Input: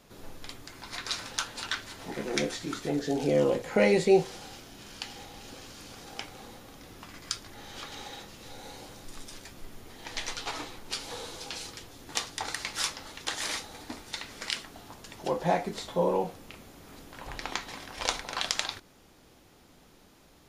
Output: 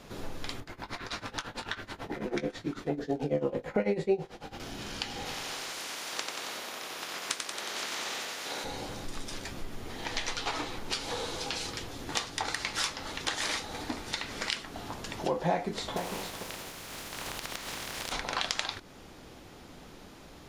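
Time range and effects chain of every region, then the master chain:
0:00.60–0:04.60: parametric band 7,300 Hz −10 dB 2.5 octaves + amplitude tremolo 9.1 Hz, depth 92% + double-tracking delay 20 ms −12 dB
0:05.25–0:08.63: ceiling on every frequency bin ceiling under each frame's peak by 19 dB + high-pass filter 300 Hz + repeating echo 91 ms, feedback 59%, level −5 dB
0:15.96–0:18.11: compressing power law on the bin magnitudes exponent 0.28 + downward compressor, threshold −40 dBFS + single-tap delay 452 ms −12 dB
whole clip: high-shelf EQ 7,900 Hz −9 dB; downward compressor 2 to 1, threshold −42 dBFS; level +8.5 dB

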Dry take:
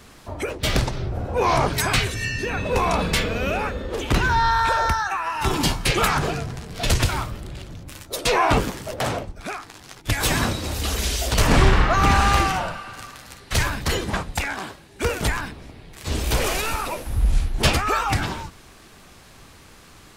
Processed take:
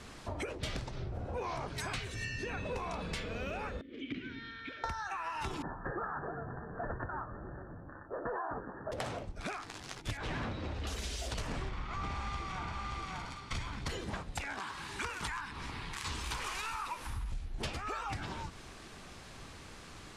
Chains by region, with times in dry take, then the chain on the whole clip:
0:03.81–0:04.84: formant filter i + high-frequency loss of the air 110 metres
0:05.62–0:08.92: Chebyshev low-pass filter 1,800 Hz, order 10 + low-shelf EQ 230 Hz −11 dB
0:10.17–0:10.87: low-pass filter 2,600 Hz + hard clipping −21.5 dBFS
0:11.69–0:13.87: lower of the sound and its delayed copy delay 0.88 ms + high-frequency loss of the air 53 metres + single-tap delay 578 ms −11.5 dB
0:14.60–0:17.32: low shelf with overshoot 790 Hz −7 dB, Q 3 + upward compression, threshold −28 dBFS
whole clip: Bessel low-pass filter 8,300 Hz, order 4; downward compressor 10 to 1, threshold −33 dBFS; level −2.5 dB

